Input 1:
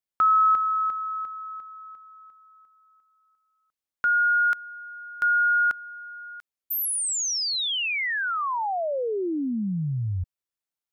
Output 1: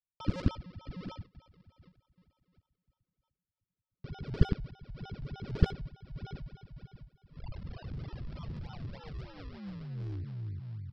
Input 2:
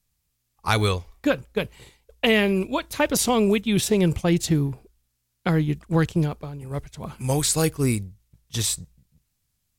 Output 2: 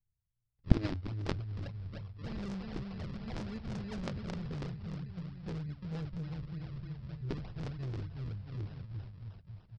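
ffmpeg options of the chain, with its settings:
ffmpeg -i in.wav -af "aecho=1:1:360|666|926.1|1147|1335:0.631|0.398|0.251|0.158|0.1,flanger=delay=8.9:depth=1.9:regen=41:speed=0.28:shape=triangular,aresample=11025,acrusher=samples=10:mix=1:aa=0.000001:lfo=1:lforange=10:lforate=3.3,aresample=44100,firequalizer=gain_entry='entry(130,0);entry(280,-19);entry(1300,-16)':delay=0.05:min_phase=1,aeval=exprs='0.178*(cos(1*acos(clip(val(0)/0.178,-1,1)))-cos(1*PI/2))+0.0794*(cos(3*acos(clip(val(0)/0.178,-1,1)))-cos(3*PI/2))':channel_layout=same,volume=5dB" out.wav

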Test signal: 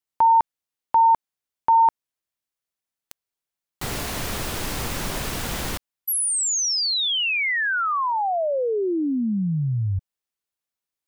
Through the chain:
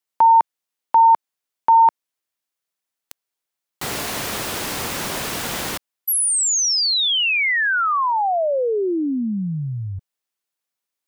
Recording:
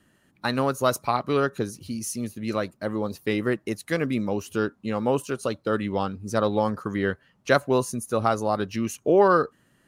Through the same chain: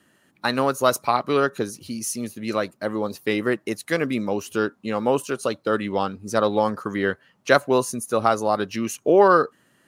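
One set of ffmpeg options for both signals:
ffmpeg -i in.wav -af "highpass=frequency=250:poles=1,volume=4dB" out.wav

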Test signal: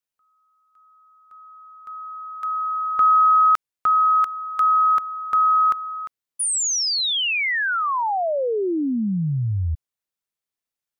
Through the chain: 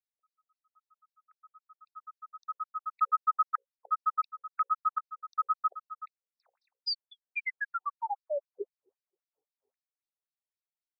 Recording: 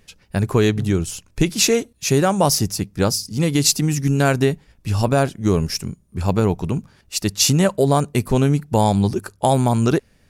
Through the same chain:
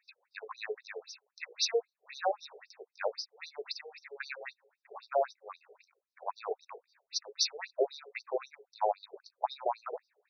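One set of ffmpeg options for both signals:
ffmpeg -i in.wav -filter_complex "[0:a]acrossover=split=440|5500[link_01][link_02][link_03];[link_03]volume=23.5dB,asoftclip=hard,volume=-23.5dB[link_04];[link_01][link_02][link_04]amix=inputs=3:normalize=0,asuperstop=centerf=3100:order=12:qfactor=3.2,bandreject=frequency=60:width_type=h:width=6,bandreject=frequency=120:width_type=h:width=6,bandreject=frequency=180:width_type=h:width=6,bandreject=frequency=240:width_type=h:width=6,bandreject=frequency=300:width_type=h:width=6,bandreject=frequency=360:width_type=h:width=6,bandreject=frequency=420:width_type=h:width=6,bandreject=frequency=480:width_type=h:width=6,bandreject=frequency=540:width_type=h:width=6,afftfilt=real='re*between(b*sr/1024,540*pow(4500/540,0.5+0.5*sin(2*PI*3.8*pts/sr))/1.41,540*pow(4500/540,0.5+0.5*sin(2*PI*3.8*pts/sr))*1.41)':imag='im*between(b*sr/1024,540*pow(4500/540,0.5+0.5*sin(2*PI*3.8*pts/sr))/1.41,540*pow(4500/540,0.5+0.5*sin(2*PI*3.8*pts/sr))*1.41)':win_size=1024:overlap=0.75,volume=-7dB" out.wav

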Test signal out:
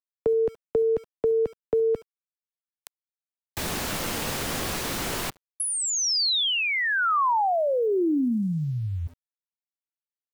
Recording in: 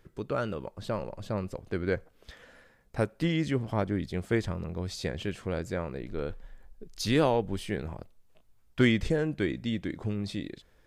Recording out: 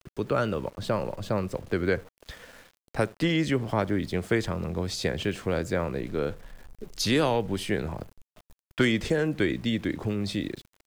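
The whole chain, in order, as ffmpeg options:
ffmpeg -i in.wav -filter_complex "[0:a]acrossover=split=96|260|1200|4400[link_01][link_02][link_03][link_04][link_05];[link_01]acompressor=threshold=-47dB:ratio=4[link_06];[link_02]acompressor=threshold=-38dB:ratio=4[link_07];[link_03]acompressor=threshold=-30dB:ratio=4[link_08];[link_04]acompressor=threshold=-34dB:ratio=4[link_09];[link_05]acompressor=threshold=-35dB:ratio=4[link_10];[link_06][link_07][link_08][link_09][link_10]amix=inputs=5:normalize=0,asplit=2[link_11][link_12];[link_12]adelay=70,lowpass=frequency=940:poles=1,volume=-21dB,asplit=2[link_13][link_14];[link_14]adelay=70,lowpass=frequency=940:poles=1,volume=0.24[link_15];[link_11][link_13][link_15]amix=inputs=3:normalize=0,aeval=exprs='val(0)*gte(abs(val(0)),0.00188)':channel_layout=same,volume=6.5dB" out.wav

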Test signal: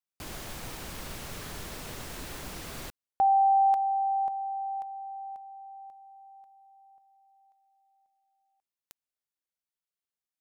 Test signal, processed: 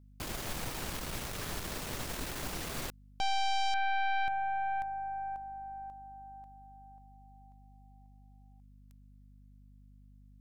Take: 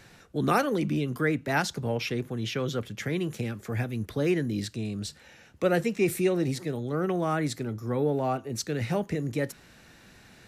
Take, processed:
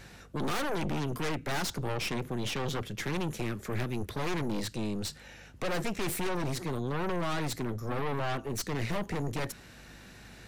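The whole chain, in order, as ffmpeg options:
ffmpeg -i in.wav -af "asoftclip=type=tanh:threshold=-22.5dB,aeval=exprs='val(0)+0.00126*(sin(2*PI*50*n/s)+sin(2*PI*2*50*n/s)/2+sin(2*PI*3*50*n/s)/3+sin(2*PI*4*50*n/s)/4+sin(2*PI*5*50*n/s)/5)':channel_layout=same,aeval=exprs='0.0794*(cos(1*acos(clip(val(0)/0.0794,-1,1)))-cos(1*PI/2))+0.0316*(cos(4*acos(clip(val(0)/0.0794,-1,1)))-cos(4*PI/2))+0.0224*(cos(5*acos(clip(val(0)/0.0794,-1,1)))-cos(5*PI/2))':channel_layout=same,volume=-5.5dB" out.wav

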